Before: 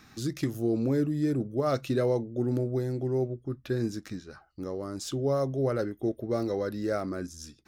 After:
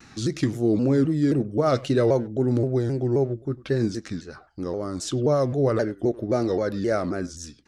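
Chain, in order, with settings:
low-pass filter 9,200 Hz 24 dB per octave
far-end echo of a speakerphone 100 ms, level −19 dB
pitch modulation by a square or saw wave saw down 3.8 Hz, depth 160 cents
level +6 dB

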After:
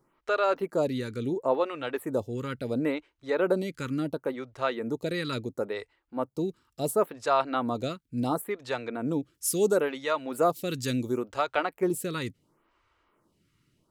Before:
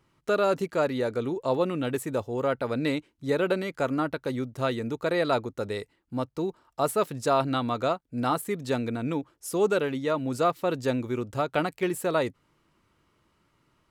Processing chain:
0:09.34–0:11.53: high-shelf EQ 3,300 Hz +8.5 dB
phaser with staggered stages 0.72 Hz
level +1.5 dB

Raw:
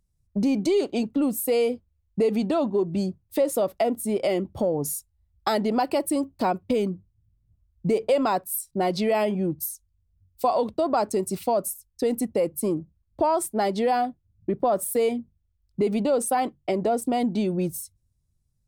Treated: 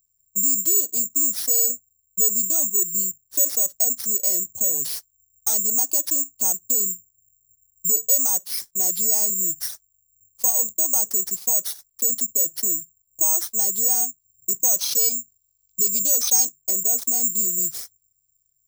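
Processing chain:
bad sample-rate conversion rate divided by 6×, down none, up zero stuff
high shelf with overshoot 3,700 Hz +9.5 dB, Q 1.5
gain on a spectral selection 0:14.21–0:16.56, 2,200–6,600 Hz +9 dB
level −15 dB

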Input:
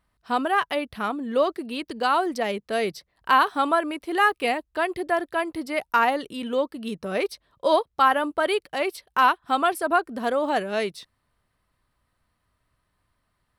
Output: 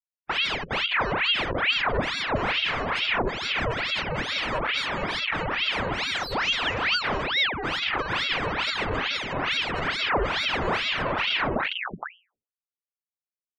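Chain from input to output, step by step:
samples sorted by size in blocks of 32 samples
downsampling to 22,050 Hz
in parallel at −9 dB: hard clipping −21 dBFS, distortion −8 dB
on the sum: sound drawn into the spectrogram fall, 0:06.06–0:07.77, 460–6,100 Hz −31 dBFS
on a send: feedback delay with all-pass diffusion 632 ms, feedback 42%, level −14 dB
on the sum: comparator with hysteresis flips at −35 dBFS
high-shelf EQ 7,300 Hz −5.5 dB
mains-hum notches 60/120/180/240/300/360 Hz
gate on every frequency bin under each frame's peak −20 dB strong
hollow resonant body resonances 200/790/1,600/2,400 Hz, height 15 dB, ringing for 20 ms
ring modulator whose carrier an LFO sweeps 1,600 Hz, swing 90%, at 2.3 Hz
level −8 dB

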